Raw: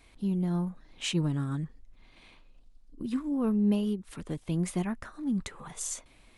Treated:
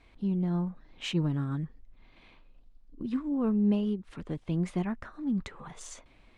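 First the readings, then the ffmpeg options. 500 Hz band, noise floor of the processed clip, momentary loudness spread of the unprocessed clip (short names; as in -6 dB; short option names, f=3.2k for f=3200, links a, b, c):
0.0 dB, -60 dBFS, 12 LU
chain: -af "adynamicsmooth=sensitivity=1:basefreq=4.3k"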